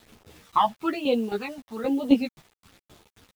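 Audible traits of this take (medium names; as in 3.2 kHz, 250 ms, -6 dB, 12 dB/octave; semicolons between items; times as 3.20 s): tremolo saw down 3.8 Hz, depth 75%; phasing stages 12, 1.1 Hz, lowest notch 400–1800 Hz; a quantiser's noise floor 10-bit, dither none; a shimmering, thickened sound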